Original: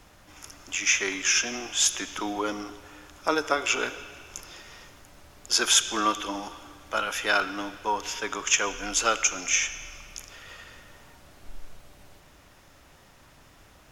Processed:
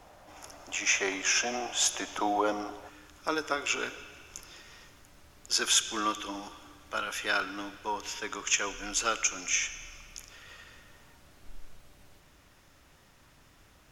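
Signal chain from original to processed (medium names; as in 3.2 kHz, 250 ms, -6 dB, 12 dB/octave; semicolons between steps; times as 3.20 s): peaking EQ 690 Hz +12 dB 1.2 oct, from 2.89 s -3 dB; trim -4.5 dB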